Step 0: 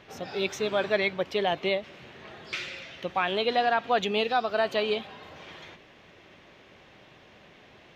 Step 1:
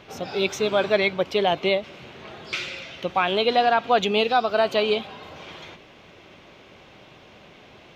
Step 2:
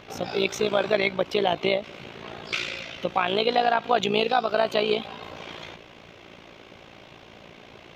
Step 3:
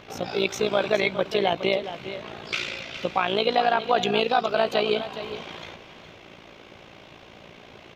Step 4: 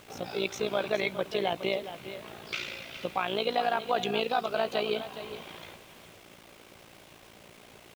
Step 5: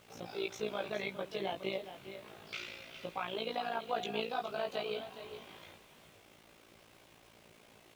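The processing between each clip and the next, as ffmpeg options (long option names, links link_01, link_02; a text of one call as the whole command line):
ffmpeg -i in.wav -af "equalizer=frequency=1800:width_type=o:width=0.21:gain=-7.5,volume=5.5dB" out.wav
ffmpeg -i in.wav -af "acompressor=threshold=-26dB:ratio=1.5,tremolo=f=57:d=0.71,volume=4.5dB" out.wav
ffmpeg -i in.wav -af "aecho=1:1:415:0.266" out.wav
ffmpeg -i in.wav -af "acrusher=bits=7:mix=0:aa=0.000001,volume=-6.5dB" out.wav
ffmpeg -i in.wav -af "flanger=delay=17.5:depth=3.6:speed=0.28,volume=-5dB" out.wav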